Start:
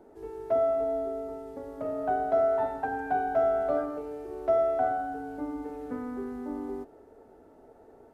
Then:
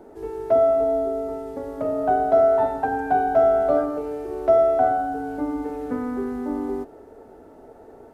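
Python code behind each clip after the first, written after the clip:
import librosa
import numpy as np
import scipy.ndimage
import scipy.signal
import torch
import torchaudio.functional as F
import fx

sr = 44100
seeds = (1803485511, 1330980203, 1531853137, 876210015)

y = fx.dynamic_eq(x, sr, hz=1900.0, q=1.0, threshold_db=-44.0, ratio=4.0, max_db=-4)
y = y * 10.0 ** (8.5 / 20.0)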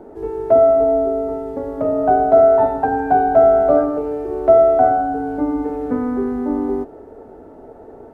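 y = fx.high_shelf(x, sr, hz=2100.0, db=-12.0)
y = y * 10.0 ** (7.0 / 20.0)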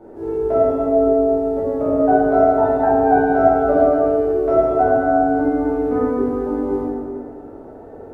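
y = fx.rev_plate(x, sr, seeds[0], rt60_s=1.8, hf_ratio=0.65, predelay_ms=0, drr_db=-8.5)
y = y * 10.0 ** (-7.5 / 20.0)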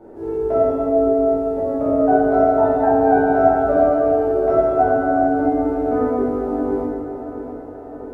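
y = fx.echo_feedback(x, sr, ms=670, feedback_pct=55, wet_db=-11.0)
y = y * 10.0 ** (-1.0 / 20.0)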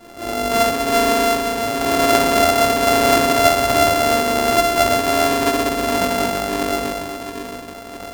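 y = np.r_[np.sort(x[:len(x) // 64 * 64].reshape(-1, 64), axis=1).ravel(), x[len(x) // 64 * 64:]]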